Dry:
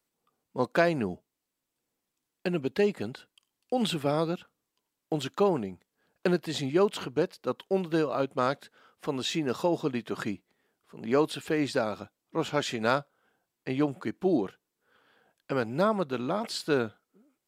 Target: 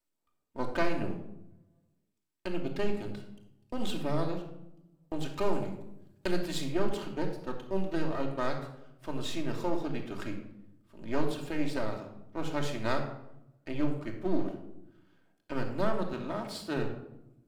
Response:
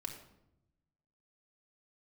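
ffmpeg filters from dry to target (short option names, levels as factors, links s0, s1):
-filter_complex "[0:a]aeval=exprs='if(lt(val(0),0),0.251*val(0),val(0))':c=same,asettb=1/sr,asplit=3[s0][s1][s2];[s0]atrim=end=5.334[s3];[s1]atrim=start=5.33:end=6.66,asetpts=PTS-STARTPTS,afade=t=in:d=0.004:c=qsin,afade=t=out:st=1.326:d=0.004:c=qsin,highshelf=f=3000:g=8[s4];[s2]atrim=start=6.656[s5];[s3][s4]acrossfade=d=0.004:c1=hsin:c2=qsin[s6];[s6][s5]acrossfade=d=0.004:c1=qsin:c2=hsin,asettb=1/sr,asplit=3[s7][s8][s9];[s7]atrim=end=16.134[s10];[s8]atrim=start=16.13:end=16.77,asetpts=PTS-STARTPTS,afade=t=in:d=0.004:c=qsin,afade=t=out:st=0.636:d=0.004:c=qsin,highpass=58[s11];[s9]atrim=start=16.766[s12];[s10][s11]acrossfade=d=0.004:c1=hsin:c2=qsin[s13];[s13][s12]acrossfade=d=0.004:c1=qsin:c2=hsin[s14];[1:a]atrim=start_sample=2205[s15];[s14][s15]afir=irnorm=-1:irlink=0,volume=0.794"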